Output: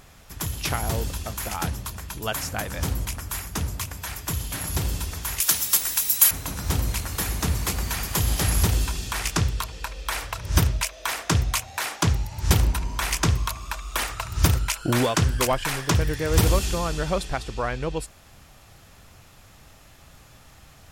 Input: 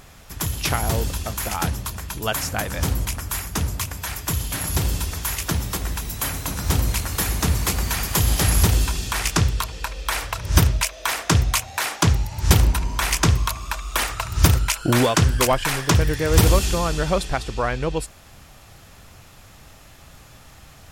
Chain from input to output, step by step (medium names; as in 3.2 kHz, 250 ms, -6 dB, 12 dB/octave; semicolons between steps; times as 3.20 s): 5.40–6.31 s: tilt EQ +4.5 dB/octave; trim -4 dB